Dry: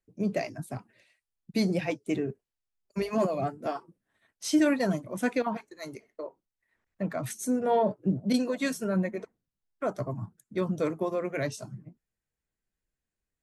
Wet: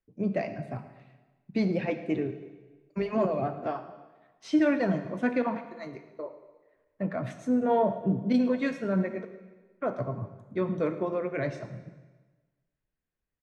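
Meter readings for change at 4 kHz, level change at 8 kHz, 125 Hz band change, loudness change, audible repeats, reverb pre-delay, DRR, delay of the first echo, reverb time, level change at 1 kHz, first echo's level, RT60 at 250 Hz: -7.0 dB, under -15 dB, +0.5 dB, +0.5 dB, 1, 6 ms, 8.5 dB, 0.109 s, 1.3 s, +0.5 dB, -19.0 dB, 1.3 s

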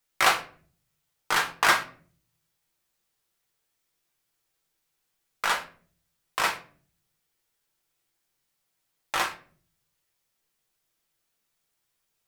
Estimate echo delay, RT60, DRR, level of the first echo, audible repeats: none, 0.45 s, 1.5 dB, none, none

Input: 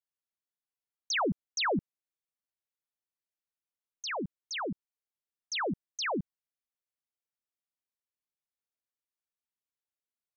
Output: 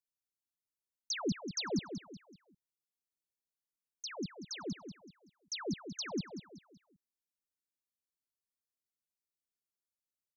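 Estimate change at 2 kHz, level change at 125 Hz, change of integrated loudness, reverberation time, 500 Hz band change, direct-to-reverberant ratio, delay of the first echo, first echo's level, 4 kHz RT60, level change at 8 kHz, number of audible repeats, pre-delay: -12.0 dB, -2.0 dB, -6.5 dB, none, -6.5 dB, none, 0.189 s, -9.0 dB, none, n/a, 4, none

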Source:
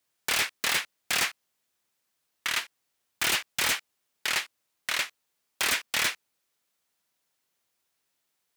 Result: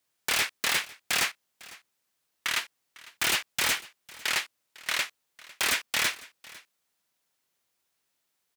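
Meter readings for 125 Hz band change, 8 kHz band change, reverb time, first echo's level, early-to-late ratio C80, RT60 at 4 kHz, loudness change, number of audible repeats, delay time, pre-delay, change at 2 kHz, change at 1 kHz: 0.0 dB, 0.0 dB, none, -21.0 dB, none, none, 0.0 dB, 1, 0.502 s, none, 0.0 dB, 0.0 dB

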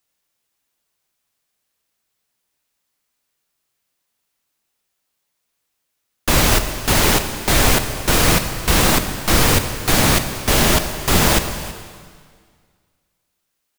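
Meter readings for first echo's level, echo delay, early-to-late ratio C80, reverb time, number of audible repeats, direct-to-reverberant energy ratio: -17.5 dB, 0.323 s, 9.5 dB, 1.8 s, 1, 7.0 dB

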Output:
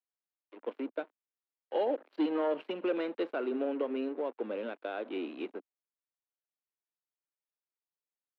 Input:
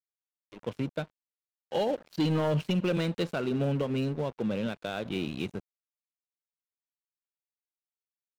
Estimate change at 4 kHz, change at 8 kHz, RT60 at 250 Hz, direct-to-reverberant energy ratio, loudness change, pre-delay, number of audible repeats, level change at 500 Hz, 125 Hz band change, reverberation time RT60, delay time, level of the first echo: -10.0 dB, under -25 dB, none, none, -4.0 dB, none, none, -1.5 dB, under -30 dB, none, none, none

